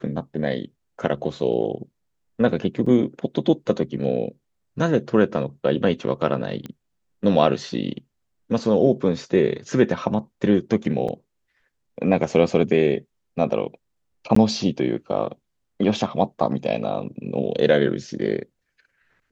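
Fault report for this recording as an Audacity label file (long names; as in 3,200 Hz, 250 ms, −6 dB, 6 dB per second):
2.860000	2.860000	drop-out 4.5 ms
6.660000	6.660000	click −20 dBFS
11.080000	11.090000	drop-out 5.3 ms
14.350000	14.360000	drop-out 14 ms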